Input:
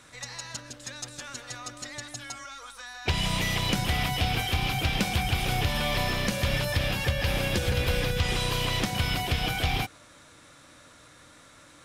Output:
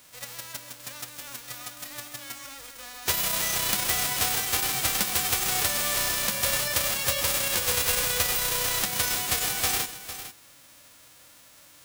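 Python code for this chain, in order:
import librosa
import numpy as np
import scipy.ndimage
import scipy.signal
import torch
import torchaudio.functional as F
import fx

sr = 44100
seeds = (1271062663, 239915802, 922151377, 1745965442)

p1 = fx.envelope_flatten(x, sr, power=0.1)
y = p1 + fx.echo_single(p1, sr, ms=453, db=-12.0, dry=0)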